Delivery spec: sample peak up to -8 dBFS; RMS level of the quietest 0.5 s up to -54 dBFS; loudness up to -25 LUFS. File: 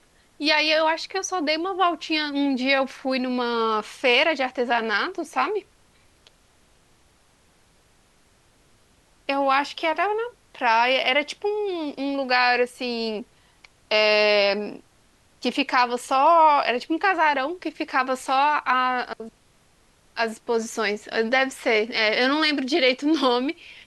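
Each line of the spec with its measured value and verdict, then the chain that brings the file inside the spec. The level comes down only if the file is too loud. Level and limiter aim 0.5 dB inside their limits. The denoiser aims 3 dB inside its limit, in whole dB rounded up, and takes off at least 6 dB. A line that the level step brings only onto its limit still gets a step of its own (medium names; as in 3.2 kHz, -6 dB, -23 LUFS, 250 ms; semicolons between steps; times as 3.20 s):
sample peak -6.0 dBFS: fail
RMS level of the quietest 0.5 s -60 dBFS: pass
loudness -22.0 LUFS: fail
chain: trim -3.5 dB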